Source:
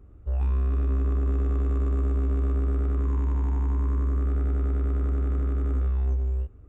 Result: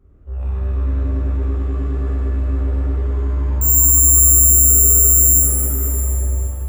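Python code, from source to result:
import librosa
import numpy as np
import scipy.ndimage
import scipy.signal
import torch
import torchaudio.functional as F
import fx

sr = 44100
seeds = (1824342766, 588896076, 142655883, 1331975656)

y = fx.resample_bad(x, sr, factor=6, down='none', up='zero_stuff', at=(3.61, 5.39))
y = fx.rev_shimmer(y, sr, seeds[0], rt60_s=2.6, semitones=7, shimmer_db=-8, drr_db=-8.0)
y = y * 10.0 ** (-5.0 / 20.0)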